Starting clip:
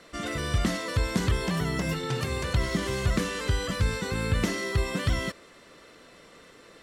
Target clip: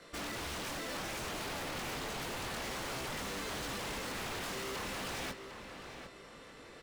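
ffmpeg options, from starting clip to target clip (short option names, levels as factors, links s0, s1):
-filter_complex "[0:a]flanger=delay=18.5:depth=5:speed=0.96,asplit=2[s0][s1];[s1]acrusher=bits=5:mix=0:aa=0.000001,volume=0.447[s2];[s0][s2]amix=inputs=2:normalize=0,acrossover=split=430[s3][s4];[s4]acompressor=threshold=0.0158:ratio=6[s5];[s3][s5]amix=inputs=2:normalize=0,aeval=exprs='0.0168*(abs(mod(val(0)/0.0168+3,4)-2)-1)':c=same,asplit=2[s6][s7];[s7]adelay=752,lowpass=f=3500:p=1,volume=0.376,asplit=2[s8][s9];[s9]adelay=752,lowpass=f=3500:p=1,volume=0.38,asplit=2[s10][s11];[s11]adelay=752,lowpass=f=3500:p=1,volume=0.38,asplit=2[s12][s13];[s13]adelay=752,lowpass=f=3500:p=1,volume=0.38[s14];[s8][s10][s12][s14]amix=inputs=4:normalize=0[s15];[s6][s15]amix=inputs=2:normalize=0"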